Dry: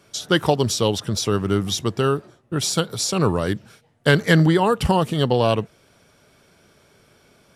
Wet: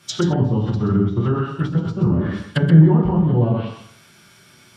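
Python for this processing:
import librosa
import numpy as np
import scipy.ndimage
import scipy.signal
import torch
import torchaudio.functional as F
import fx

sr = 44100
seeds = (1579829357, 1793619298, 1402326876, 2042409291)

p1 = scipy.signal.sosfilt(scipy.signal.butter(2, 110.0, 'highpass', fs=sr, output='sos'), x)
p2 = fx.peak_eq(p1, sr, hz=500.0, db=-14.0, octaves=1.5)
p3 = fx.rev_plate(p2, sr, seeds[0], rt60_s=0.9, hf_ratio=0.95, predelay_ms=0, drr_db=-4.5)
p4 = 10.0 ** (-11.0 / 20.0) * np.tanh(p3 / 10.0 ** (-11.0 / 20.0))
p5 = p3 + (p4 * librosa.db_to_amplitude(-8.5))
p6 = fx.env_lowpass_down(p5, sr, base_hz=500.0, full_db=-14.0)
p7 = fx.stretch_vocoder(p6, sr, factor=0.63)
p8 = p7 + fx.echo_single(p7, sr, ms=128, db=-8.5, dry=0)
y = p8 * librosa.db_to_amplitude(2.0)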